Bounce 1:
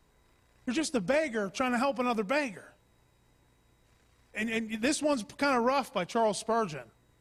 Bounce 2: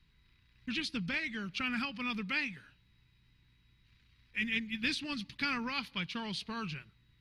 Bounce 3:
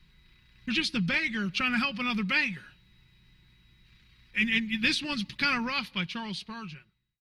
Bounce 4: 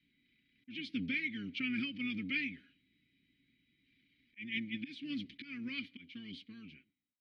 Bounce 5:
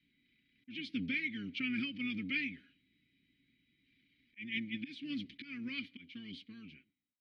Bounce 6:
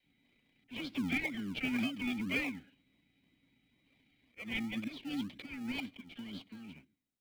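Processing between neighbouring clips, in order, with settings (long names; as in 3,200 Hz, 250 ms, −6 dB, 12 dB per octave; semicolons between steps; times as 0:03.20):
drawn EQ curve 170 Hz 0 dB, 410 Hz −15 dB, 650 Hz −27 dB, 930 Hz −13 dB, 2,500 Hz +3 dB, 4,300 Hz +3 dB, 7,700 Hz −20 dB, 11,000 Hz −13 dB
fade-out on the ending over 1.74 s; comb filter 5.5 ms, depth 40%; level +7 dB
sub-octave generator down 1 octave, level −2 dB; volume swells 276 ms; formant filter i; level +1 dB
no processing that can be heard
all-pass dispersion lows, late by 41 ms, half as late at 520 Hz; in parallel at −7 dB: sample-and-hold swept by an LFO 33×, swing 60% 2 Hz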